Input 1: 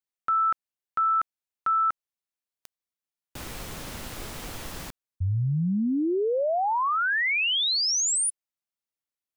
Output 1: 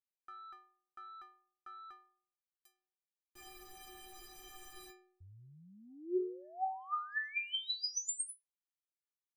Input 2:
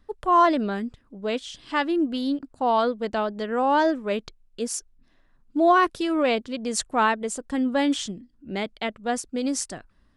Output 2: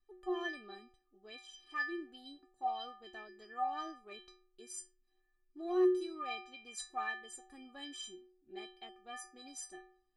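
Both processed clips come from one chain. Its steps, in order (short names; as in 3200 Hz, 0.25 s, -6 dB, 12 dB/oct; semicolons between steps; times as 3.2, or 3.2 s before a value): added harmonics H 3 -29 dB, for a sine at -8.5 dBFS; metallic resonator 360 Hz, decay 0.66 s, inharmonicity 0.03; gain +4.5 dB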